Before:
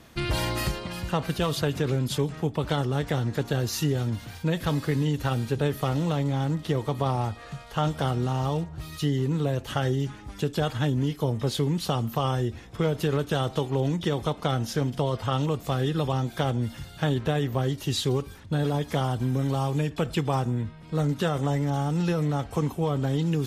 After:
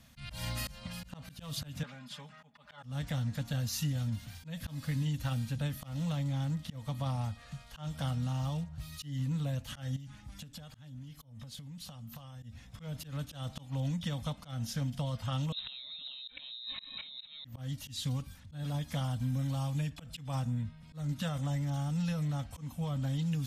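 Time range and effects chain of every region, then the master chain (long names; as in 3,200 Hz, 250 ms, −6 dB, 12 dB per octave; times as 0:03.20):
0:01.83–0:02.83: resonant band-pass 1,300 Hz, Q 0.88 + comb filter 4.9 ms, depth 79%
0:09.96–0:12.43: downward compressor 12 to 1, threshold −35 dBFS + single-tap delay 322 ms −23 dB
0:15.52–0:17.45: parametric band 640 Hz −5.5 dB 0.67 octaves + voice inversion scrambler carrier 3,900 Hz + compressor whose output falls as the input rises −37 dBFS
whole clip: Chebyshev band-stop filter 260–540 Hz, order 2; parametric band 750 Hz −9.5 dB 2.8 octaves; volume swells 186 ms; level −3.5 dB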